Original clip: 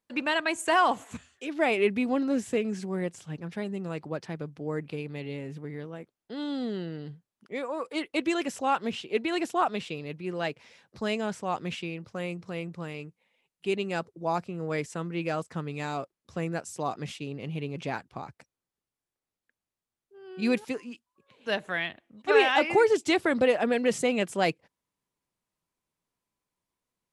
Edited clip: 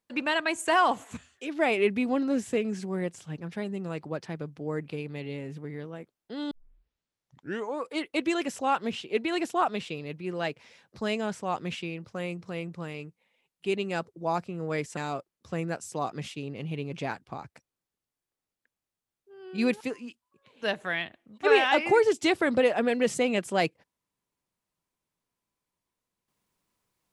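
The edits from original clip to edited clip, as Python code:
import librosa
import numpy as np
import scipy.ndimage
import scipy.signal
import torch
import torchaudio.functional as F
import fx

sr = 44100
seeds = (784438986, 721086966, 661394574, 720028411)

y = fx.edit(x, sr, fx.tape_start(start_s=6.51, length_s=1.32),
    fx.cut(start_s=14.97, length_s=0.84), tone=tone)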